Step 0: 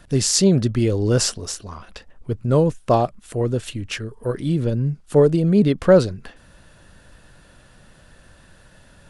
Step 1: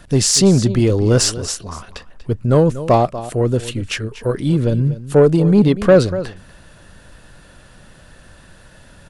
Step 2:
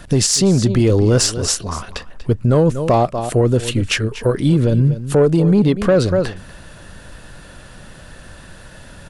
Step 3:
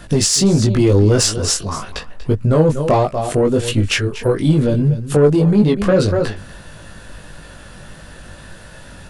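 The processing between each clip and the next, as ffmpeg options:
-af "aecho=1:1:240:0.168,acontrast=54,volume=0.891"
-af "alimiter=limit=0.251:level=0:latency=1:release=193,volume=1.88"
-filter_complex "[0:a]flanger=delay=18.5:depth=2.2:speed=1.6,asplit=2[s0][s1];[s1]asoftclip=type=tanh:threshold=0.178,volume=0.398[s2];[s0][s2]amix=inputs=2:normalize=0,volume=1.19"

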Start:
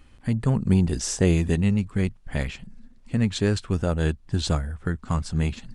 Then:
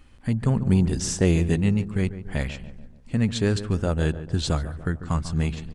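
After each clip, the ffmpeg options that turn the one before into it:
-filter_complex "[0:a]asplit=2[s0][s1];[s1]adelay=144,lowpass=f=1400:p=1,volume=0.251,asplit=2[s2][s3];[s3]adelay=144,lowpass=f=1400:p=1,volume=0.53,asplit=2[s4][s5];[s5]adelay=144,lowpass=f=1400:p=1,volume=0.53,asplit=2[s6][s7];[s7]adelay=144,lowpass=f=1400:p=1,volume=0.53,asplit=2[s8][s9];[s9]adelay=144,lowpass=f=1400:p=1,volume=0.53,asplit=2[s10][s11];[s11]adelay=144,lowpass=f=1400:p=1,volume=0.53[s12];[s0][s2][s4][s6][s8][s10][s12]amix=inputs=7:normalize=0"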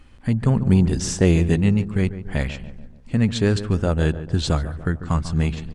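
-af "highshelf=f=7600:g=-6,volume=1.5"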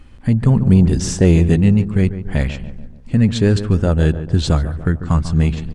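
-af "acontrast=45,lowshelf=f=450:g=4.5,volume=0.668"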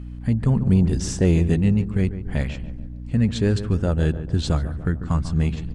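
-af "aeval=exprs='val(0)+0.0447*(sin(2*PI*60*n/s)+sin(2*PI*2*60*n/s)/2+sin(2*PI*3*60*n/s)/3+sin(2*PI*4*60*n/s)/4+sin(2*PI*5*60*n/s)/5)':c=same,volume=0.501"

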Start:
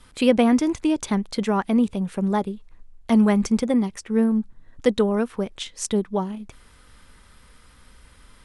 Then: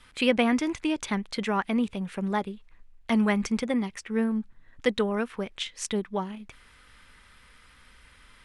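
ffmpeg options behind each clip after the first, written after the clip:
-af "equalizer=f=2200:t=o:w=1.9:g=10,volume=0.447"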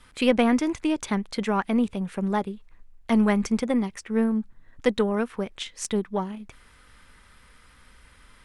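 -af "equalizer=f=2800:t=o:w=1.9:g=-5,aeval=exprs='0.316*(cos(1*acos(clip(val(0)/0.316,-1,1)))-cos(1*PI/2))+0.0141*(cos(4*acos(clip(val(0)/0.316,-1,1)))-cos(4*PI/2))':c=same,volume=1.41"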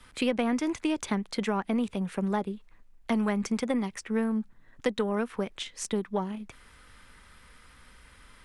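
-filter_complex "[0:a]acrossover=split=120|730[s0][s1][s2];[s0]acompressor=threshold=0.00282:ratio=4[s3];[s1]acompressor=threshold=0.0501:ratio=4[s4];[s2]acompressor=threshold=0.0224:ratio=4[s5];[s3][s4][s5]amix=inputs=3:normalize=0"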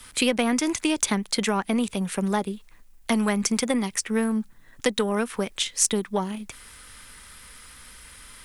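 -af "crystalizer=i=3.5:c=0,volume=1.5"

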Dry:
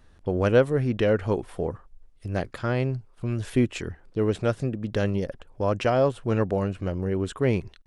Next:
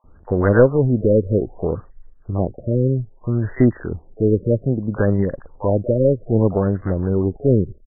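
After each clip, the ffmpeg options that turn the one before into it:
-filter_complex "[0:a]acrossover=split=800|5200[s0][s1][s2];[s0]adelay=40[s3];[s2]adelay=720[s4];[s3][s1][s4]amix=inputs=3:normalize=0,aeval=exprs='0.355*(cos(1*acos(clip(val(0)/0.355,-1,1)))-cos(1*PI/2))+0.02*(cos(4*acos(clip(val(0)/0.355,-1,1)))-cos(4*PI/2))':c=same,afftfilt=real='re*lt(b*sr/1024,590*pow(2100/590,0.5+0.5*sin(2*PI*0.62*pts/sr)))':imag='im*lt(b*sr/1024,590*pow(2100/590,0.5+0.5*sin(2*PI*0.62*pts/sr)))':win_size=1024:overlap=0.75,volume=2.37"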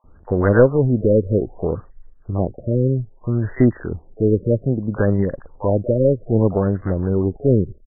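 -af anull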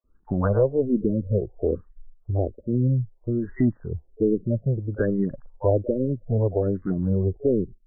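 -filter_complex "[0:a]afftdn=nr=16:nf=-24,alimiter=limit=0.376:level=0:latency=1:release=381,asplit=2[s0][s1];[s1]afreqshift=-1.2[s2];[s0][s2]amix=inputs=2:normalize=1"

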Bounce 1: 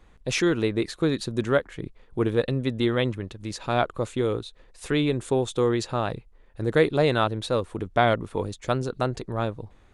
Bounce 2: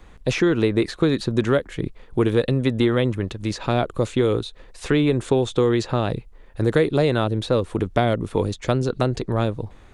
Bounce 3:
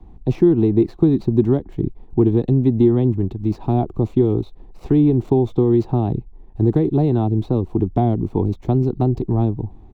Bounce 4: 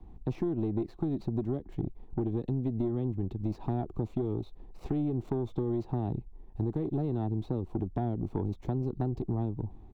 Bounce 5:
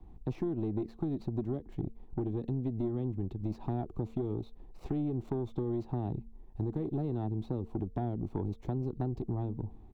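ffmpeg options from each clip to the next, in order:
-filter_complex "[0:a]acrossover=split=560|2100|6500[s0][s1][s2][s3];[s0]acompressor=threshold=0.0562:ratio=4[s4];[s1]acompressor=threshold=0.0141:ratio=4[s5];[s2]acompressor=threshold=0.00794:ratio=4[s6];[s3]acompressor=threshold=0.00112:ratio=4[s7];[s4][s5][s6][s7]amix=inputs=4:normalize=0,volume=2.66"
-filter_complex "[0:a]firequalizer=gain_entry='entry(370,0);entry(530,-18);entry(760,-2);entry(1400,-25);entry(7500,-11)':delay=0.05:min_phase=1,acrossover=split=340|460|4800[s0][s1][s2][s3];[s3]acrusher=samples=26:mix=1:aa=0.000001[s4];[s0][s1][s2][s4]amix=inputs=4:normalize=0,volume=1.88"
-af "acompressor=threshold=0.1:ratio=6,aeval=exprs='(tanh(6.31*val(0)+0.35)-tanh(0.35))/6.31':c=same,volume=0.501"
-af "bandreject=f=226.2:t=h:w=4,bandreject=f=452.4:t=h:w=4,volume=0.75"

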